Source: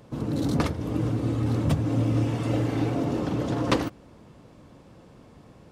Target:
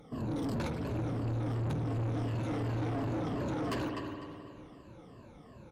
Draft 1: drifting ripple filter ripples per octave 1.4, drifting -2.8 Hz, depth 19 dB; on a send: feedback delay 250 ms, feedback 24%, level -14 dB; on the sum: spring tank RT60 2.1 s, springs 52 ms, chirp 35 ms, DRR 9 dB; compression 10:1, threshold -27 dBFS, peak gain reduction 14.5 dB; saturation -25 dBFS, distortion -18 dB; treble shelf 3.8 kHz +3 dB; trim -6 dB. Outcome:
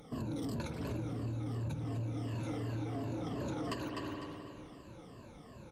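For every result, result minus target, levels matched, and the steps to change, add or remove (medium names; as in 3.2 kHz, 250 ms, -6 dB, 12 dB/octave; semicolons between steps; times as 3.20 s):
compression: peak gain reduction +14.5 dB; 8 kHz band +5.0 dB
remove: compression 10:1, threshold -27 dBFS, peak gain reduction 14.5 dB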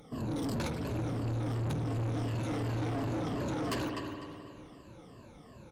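8 kHz band +6.0 dB
change: treble shelf 3.8 kHz -5 dB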